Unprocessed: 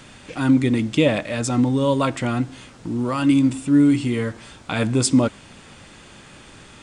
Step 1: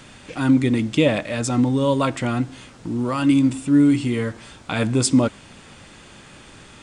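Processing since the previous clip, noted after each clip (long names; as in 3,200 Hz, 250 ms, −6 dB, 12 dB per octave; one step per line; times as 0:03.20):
no processing that can be heard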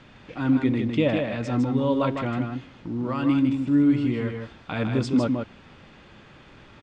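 high-frequency loss of the air 200 metres
on a send: single-tap delay 156 ms −5 dB
on the sum: level −4.5 dB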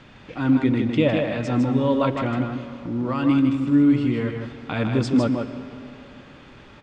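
comb and all-pass reverb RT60 2.9 s, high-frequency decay 0.7×, pre-delay 90 ms, DRR 12 dB
level +2.5 dB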